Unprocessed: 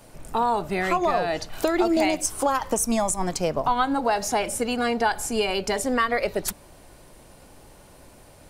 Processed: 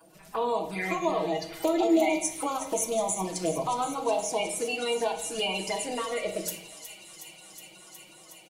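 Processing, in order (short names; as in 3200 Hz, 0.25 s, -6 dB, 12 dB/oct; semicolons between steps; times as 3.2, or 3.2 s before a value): bin magnitudes rounded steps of 30 dB; HPF 380 Hz 6 dB/oct; comb 6.3 ms, depth 53%; envelope flanger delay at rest 6.5 ms, full sweep at -23 dBFS; thin delay 0.366 s, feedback 83%, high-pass 2900 Hz, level -11 dB; on a send at -4 dB: reverb RT60 0.80 s, pre-delay 3 ms; on the sum: gain -3 dB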